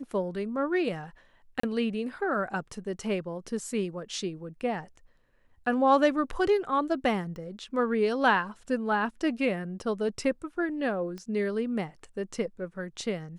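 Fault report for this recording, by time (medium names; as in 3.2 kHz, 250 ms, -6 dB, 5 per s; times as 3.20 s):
1.60–1.63 s: dropout 34 ms
7.36 s: pop
11.18 s: pop -27 dBFS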